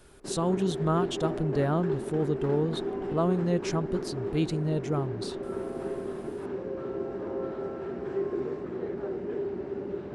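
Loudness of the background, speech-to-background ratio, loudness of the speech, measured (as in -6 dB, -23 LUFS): -34.5 LUFS, 5.0 dB, -29.5 LUFS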